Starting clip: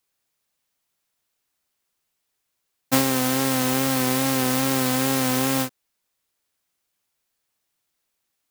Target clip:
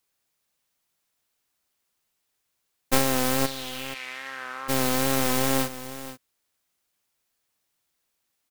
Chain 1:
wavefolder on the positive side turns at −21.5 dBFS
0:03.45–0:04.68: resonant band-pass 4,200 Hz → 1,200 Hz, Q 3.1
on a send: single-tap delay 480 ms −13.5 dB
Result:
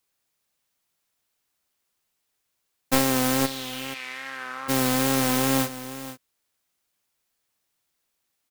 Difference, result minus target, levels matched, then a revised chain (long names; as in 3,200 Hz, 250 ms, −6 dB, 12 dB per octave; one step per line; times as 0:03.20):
wavefolder on the positive side: distortion −11 dB
wavefolder on the positive side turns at −30 dBFS
0:03.45–0:04.68: resonant band-pass 4,200 Hz → 1,200 Hz, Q 3.1
on a send: single-tap delay 480 ms −13.5 dB